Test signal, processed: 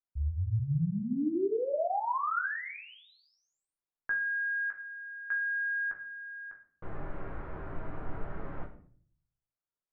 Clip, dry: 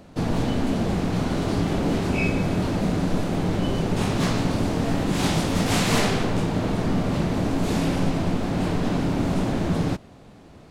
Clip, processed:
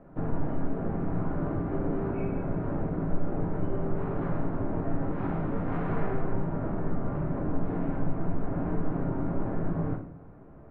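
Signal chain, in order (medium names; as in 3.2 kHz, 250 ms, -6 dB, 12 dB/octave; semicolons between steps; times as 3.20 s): low-pass 1.6 kHz 24 dB/octave; compression 4:1, threshold -24 dBFS; simulated room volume 50 m³, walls mixed, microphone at 0.6 m; trim -7 dB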